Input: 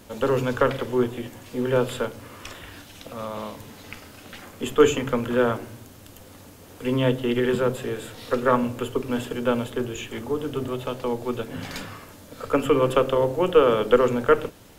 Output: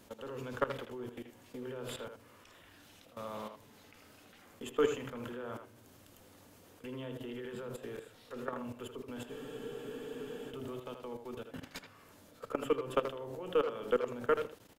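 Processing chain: bass shelf 84 Hz -7.5 dB; level held to a coarse grid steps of 17 dB; speakerphone echo 80 ms, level -7 dB; spectral freeze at 9.31 s, 1.19 s; trim -8.5 dB

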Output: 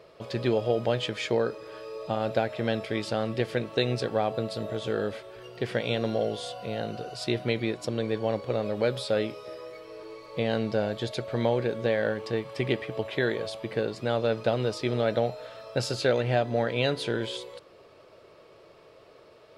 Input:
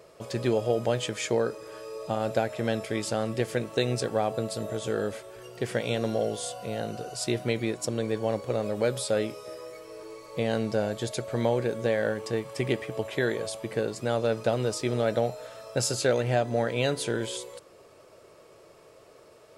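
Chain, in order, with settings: resonant high shelf 5.5 kHz -9.5 dB, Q 1.5

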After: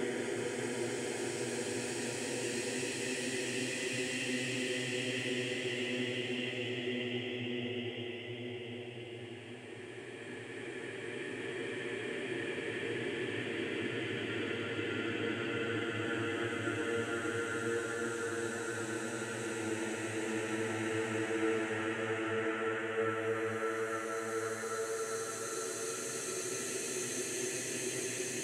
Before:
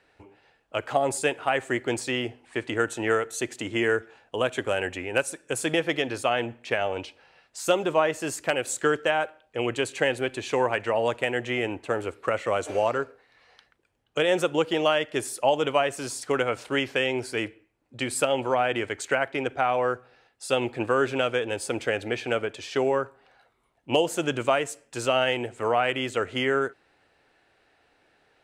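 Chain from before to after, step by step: compression, threshold -32 dBFS, peak gain reduction 15 dB; Paulstretch 18×, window 0.50 s, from 1.86 s

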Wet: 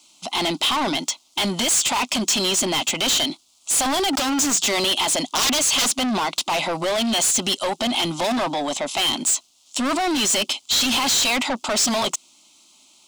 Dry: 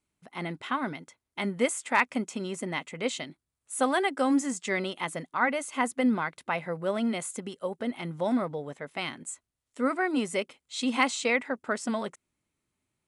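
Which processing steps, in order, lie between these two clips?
5.19–5.99 s: integer overflow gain 25 dB; high-pass 55 Hz; 4.13–4.56 s: waveshaping leveller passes 5; high-order bell 4.5 kHz +10 dB; static phaser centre 460 Hz, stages 6; overdrive pedal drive 34 dB, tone 2.4 kHz, clips at -11 dBFS; peak limiter -19 dBFS, peak gain reduction 7.5 dB; treble shelf 3.2 kHz +10.5 dB

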